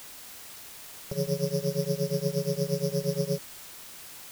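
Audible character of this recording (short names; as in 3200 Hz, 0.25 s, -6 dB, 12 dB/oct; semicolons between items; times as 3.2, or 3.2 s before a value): a buzz of ramps at a fixed pitch in blocks of 8 samples; tremolo triangle 8.5 Hz, depth 95%; a quantiser's noise floor 8-bit, dither triangular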